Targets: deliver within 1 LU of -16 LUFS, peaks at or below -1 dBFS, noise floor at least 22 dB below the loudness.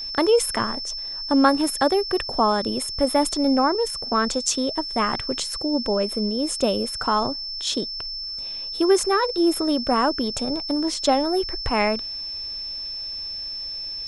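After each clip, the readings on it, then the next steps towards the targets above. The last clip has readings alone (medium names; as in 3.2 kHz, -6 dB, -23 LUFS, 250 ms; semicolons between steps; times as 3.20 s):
steady tone 5.3 kHz; tone level -29 dBFS; loudness -22.5 LUFS; peak level -3.5 dBFS; loudness target -16.0 LUFS
-> band-stop 5.3 kHz, Q 30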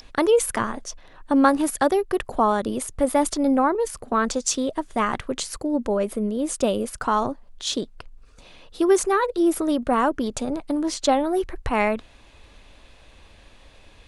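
steady tone not found; loudness -23.0 LUFS; peak level -4.5 dBFS; loudness target -16.0 LUFS
-> trim +7 dB; peak limiter -1 dBFS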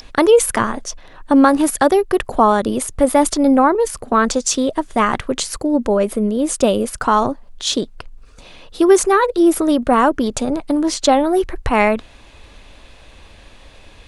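loudness -16.0 LUFS; peak level -1.0 dBFS; noise floor -44 dBFS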